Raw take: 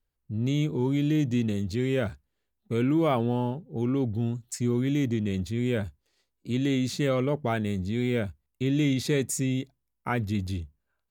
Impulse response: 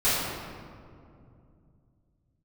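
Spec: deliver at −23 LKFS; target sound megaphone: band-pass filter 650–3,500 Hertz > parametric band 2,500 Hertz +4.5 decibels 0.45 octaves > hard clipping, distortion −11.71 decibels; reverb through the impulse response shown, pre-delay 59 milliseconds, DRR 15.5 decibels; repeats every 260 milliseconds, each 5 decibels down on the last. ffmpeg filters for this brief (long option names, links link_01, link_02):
-filter_complex "[0:a]aecho=1:1:260|520|780|1040|1300|1560|1820:0.562|0.315|0.176|0.0988|0.0553|0.031|0.0173,asplit=2[link_01][link_02];[1:a]atrim=start_sample=2205,adelay=59[link_03];[link_02][link_03]afir=irnorm=-1:irlink=0,volume=-31dB[link_04];[link_01][link_04]amix=inputs=2:normalize=0,highpass=650,lowpass=3500,equalizer=frequency=2500:width_type=o:width=0.45:gain=4.5,asoftclip=type=hard:threshold=-29dB,volume=13.5dB"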